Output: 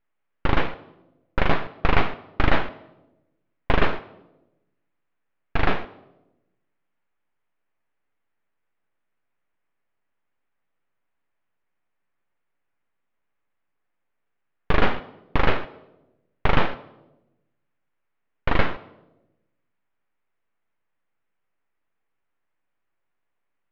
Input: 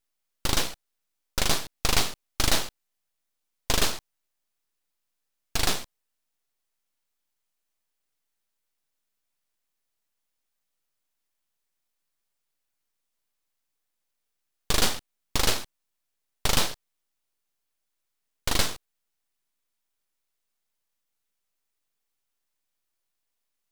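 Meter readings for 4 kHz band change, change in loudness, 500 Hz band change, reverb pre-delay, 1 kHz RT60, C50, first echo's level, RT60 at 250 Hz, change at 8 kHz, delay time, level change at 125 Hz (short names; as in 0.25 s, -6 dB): -7.5 dB, +1.5 dB, +7.5 dB, 7 ms, 0.85 s, 15.5 dB, none, 1.3 s, under -30 dB, none, +7.0 dB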